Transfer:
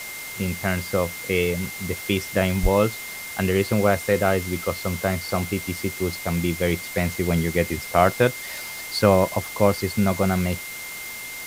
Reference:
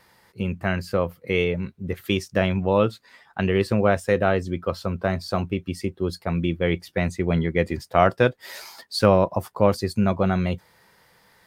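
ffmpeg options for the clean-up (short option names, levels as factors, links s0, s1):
-filter_complex "[0:a]bandreject=f=2100:w=30,asplit=3[s0][s1][s2];[s0]afade=t=out:st=2.62:d=0.02[s3];[s1]highpass=f=140:w=0.5412,highpass=f=140:w=1.3066,afade=t=in:st=2.62:d=0.02,afade=t=out:st=2.74:d=0.02[s4];[s2]afade=t=in:st=2.74:d=0.02[s5];[s3][s4][s5]amix=inputs=3:normalize=0,afftdn=nr=23:nf=-35"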